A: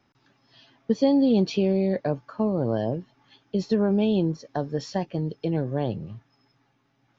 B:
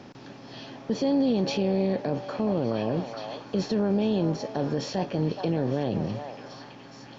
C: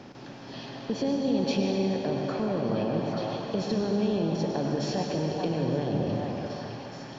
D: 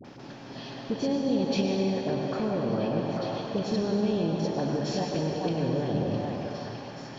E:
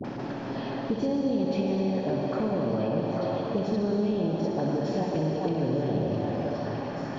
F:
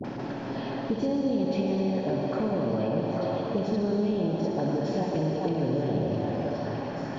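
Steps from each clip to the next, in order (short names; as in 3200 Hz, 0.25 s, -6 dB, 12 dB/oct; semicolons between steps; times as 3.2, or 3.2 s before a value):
per-bin compression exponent 0.6; limiter -17 dBFS, peak gain reduction 8 dB; delay with a stepping band-pass 0.423 s, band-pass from 870 Hz, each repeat 0.7 oct, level -2 dB
compressor 2:1, threshold -28 dBFS, peak gain reduction 4.5 dB; reverb RT60 3.1 s, pre-delay 87 ms, DRR 1 dB
dispersion highs, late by 47 ms, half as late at 760 Hz
high shelf 2700 Hz -10 dB; on a send: flutter echo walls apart 10.9 m, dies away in 0.48 s; on the sum: three-band squash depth 70%
notch 1200 Hz, Q 24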